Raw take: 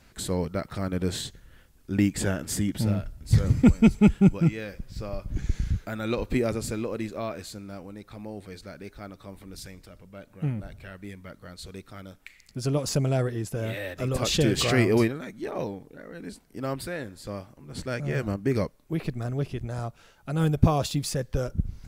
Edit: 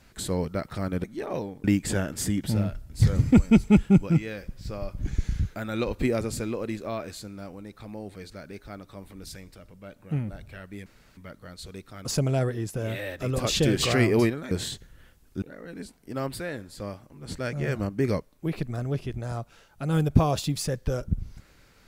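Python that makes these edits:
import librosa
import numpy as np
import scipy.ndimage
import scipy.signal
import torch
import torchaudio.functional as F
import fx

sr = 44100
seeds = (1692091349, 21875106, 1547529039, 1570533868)

y = fx.edit(x, sr, fx.swap(start_s=1.04, length_s=0.91, other_s=15.29, other_length_s=0.6),
    fx.insert_room_tone(at_s=11.17, length_s=0.31),
    fx.cut(start_s=12.05, length_s=0.78), tone=tone)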